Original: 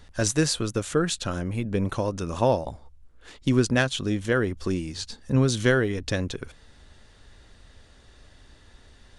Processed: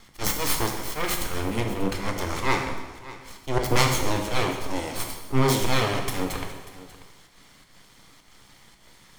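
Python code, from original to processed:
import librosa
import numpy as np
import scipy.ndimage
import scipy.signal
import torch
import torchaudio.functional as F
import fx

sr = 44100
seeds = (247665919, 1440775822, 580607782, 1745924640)

p1 = fx.lower_of_two(x, sr, delay_ms=0.94)
p2 = fx.auto_swell(p1, sr, attack_ms=111.0)
p3 = fx.highpass(p2, sr, hz=130.0, slope=6)
p4 = np.abs(p3)
p5 = p4 + fx.echo_single(p4, sr, ms=589, db=-17.0, dry=0)
p6 = fx.rev_plate(p5, sr, seeds[0], rt60_s=1.2, hf_ratio=0.9, predelay_ms=0, drr_db=2.5)
y = p6 * 10.0 ** (6.5 / 20.0)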